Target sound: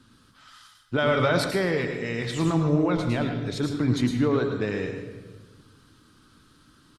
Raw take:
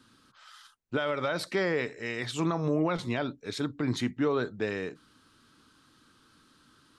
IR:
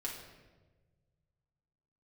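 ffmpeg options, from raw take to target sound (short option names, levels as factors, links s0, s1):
-filter_complex "[0:a]lowshelf=f=160:g=11.5,asplit=2[s0][s1];[s1]adelay=94,lowpass=f=4100:p=1,volume=0.188,asplit=2[s2][s3];[s3]adelay=94,lowpass=f=4100:p=1,volume=0.46,asplit=2[s4][s5];[s5]adelay=94,lowpass=f=4100:p=1,volume=0.46,asplit=2[s6][s7];[s7]adelay=94,lowpass=f=4100:p=1,volume=0.46[s8];[s0][s2][s4][s6][s8]amix=inputs=5:normalize=0,asplit=2[s9][s10];[1:a]atrim=start_sample=2205,highshelf=f=7000:g=11.5,adelay=107[s11];[s10][s11]afir=irnorm=-1:irlink=0,volume=0.473[s12];[s9][s12]amix=inputs=2:normalize=0,asettb=1/sr,asplit=3[s13][s14][s15];[s13]atrim=end=0.984[s16];[s14]atrim=start=0.98:end=1.51,asetpts=PTS-STARTPTS,afade=t=in:d=0.004:c=qsin,afade=t=out:st=0.526:d=0.004:c=qsin,acontrast=34[s17];[s15]atrim=start=1.506[s18];[s16][s17]acrossfade=d=0.004:c1=hsin:c2=qsin[s19];[s19][s18]acrossfade=d=0.004:c1=qsin:c2=hsin,asplit=2[s20][s21];[s21]aecho=0:1:136|272|408|544:0.0794|0.0461|0.0267|0.0155[s22];[s20][s22]amix=inputs=2:normalize=0,volume=1.12" -ar 48000 -c:a libopus -b:a 48k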